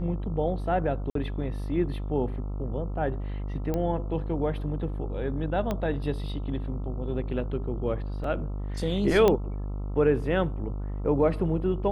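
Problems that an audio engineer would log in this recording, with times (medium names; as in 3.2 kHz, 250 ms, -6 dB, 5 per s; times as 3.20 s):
buzz 50 Hz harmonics 27 -32 dBFS
1.10–1.15 s: dropout 53 ms
3.74 s: pop -17 dBFS
5.71 s: pop -16 dBFS
8.24 s: dropout 3.1 ms
9.28 s: pop -10 dBFS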